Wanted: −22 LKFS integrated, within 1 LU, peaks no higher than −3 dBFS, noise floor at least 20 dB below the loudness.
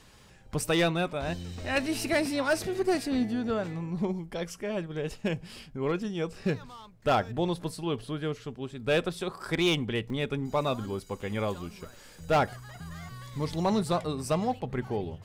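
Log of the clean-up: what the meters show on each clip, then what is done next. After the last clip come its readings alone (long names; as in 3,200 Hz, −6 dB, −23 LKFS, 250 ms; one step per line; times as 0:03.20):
share of clipped samples 0.4%; peaks flattened at −18.5 dBFS; number of dropouts 1; longest dropout 2.1 ms; integrated loudness −30.5 LKFS; sample peak −18.5 dBFS; target loudness −22.0 LKFS
→ clipped peaks rebuilt −18.5 dBFS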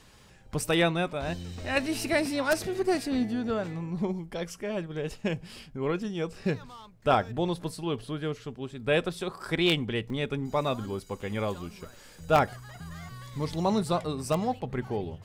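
share of clipped samples 0.0%; number of dropouts 1; longest dropout 2.1 ms
→ repair the gap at 0:10.10, 2.1 ms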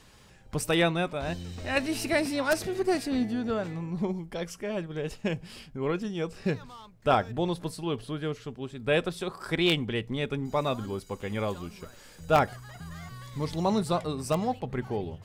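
number of dropouts 0; integrated loudness −30.0 LKFS; sample peak −9.5 dBFS; target loudness −22.0 LKFS
→ level +8 dB
brickwall limiter −3 dBFS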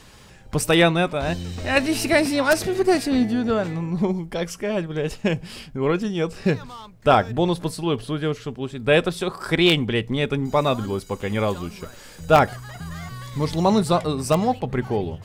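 integrated loudness −22.0 LKFS; sample peak −3.0 dBFS; background noise floor −45 dBFS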